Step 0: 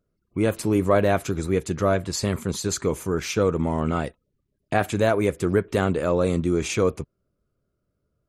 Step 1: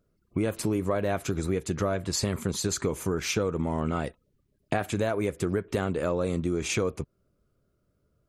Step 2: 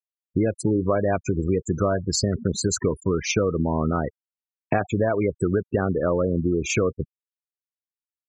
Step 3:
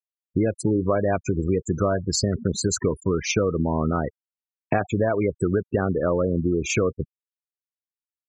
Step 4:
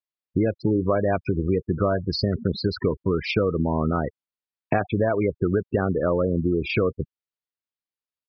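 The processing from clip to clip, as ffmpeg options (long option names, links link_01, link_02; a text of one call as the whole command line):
ffmpeg -i in.wav -af "acompressor=threshold=-28dB:ratio=6,volume=3.5dB" out.wav
ffmpeg -i in.wav -af "afftfilt=real='re*gte(hypot(re,im),0.0398)':imag='im*gte(hypot(re,im),0.0398)':win_size=1024:overlap=0.75,volume=5.5dB" out.wav
ffmpeg -i in.wav -af anull out.wav
ffmpeg -i in.wav -af "aresample=11025,aresample=44100" out.wav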